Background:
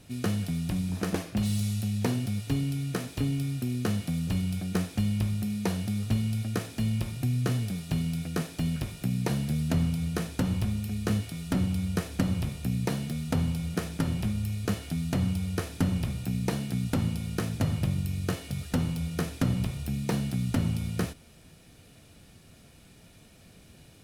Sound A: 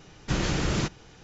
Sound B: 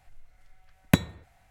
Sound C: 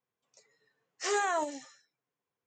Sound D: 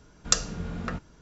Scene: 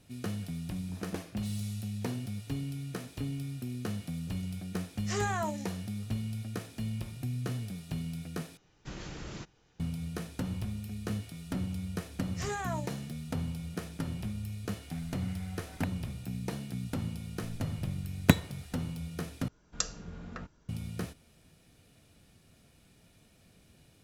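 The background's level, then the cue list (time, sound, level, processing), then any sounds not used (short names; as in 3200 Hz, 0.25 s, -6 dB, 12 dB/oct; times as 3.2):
background -7.5 dB
4.06 add C -3.5 dB
8.57 replace with A -16 dB
11.36 add C -7 dB
14.9 add B -17.5 dB + three-band squash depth 100%
17.36 add B -0.5 dB
19.48 replace with D -10 dB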